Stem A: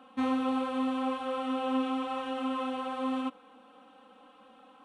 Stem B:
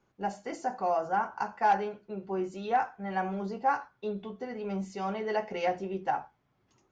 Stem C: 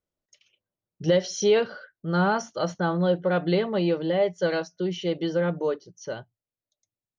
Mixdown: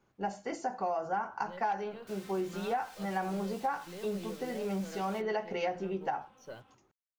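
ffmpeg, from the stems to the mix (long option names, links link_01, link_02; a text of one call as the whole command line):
ffmpeg -i stem1.wav -i stem2.wav -i stem3.wav -filter_complex "[0:a]acompressor=threshold=-34dB:ratio=10,aeval=exprs='(mod(126*val(0)+1,2)-1)/126':channel_layout=same,flanger=delay=18:depth=2.7:speed=2.3,adelay=1900,volume=-4dB[link_01];[1:a]volume=0.5dB,asplit=2[link_02][link_03];[2:a]aeval=exprs='if(lt(val(0),0),0.708*val(0),val(0))':channel_layout=same,alimiter=limit=-18dB:level=0:latency=1,acrusher=bits=8:mix=0:aa=0.5,adelay=400,volume=-11dB[link_04];[link_03]apad=whole_len=334467[link_05];[link_04][link_05]sidechaincompress=threshold=-44dB:ratio=4:attack=32:release=293[link_06];[link_01][link_02][link_06]amix=inputs=3:normalize=0,acompressor=threshold=-29dB:ratio=6" out.wav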